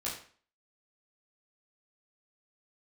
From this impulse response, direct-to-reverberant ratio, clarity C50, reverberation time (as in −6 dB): −8.0 dB, 6.0 dB, 0.45 s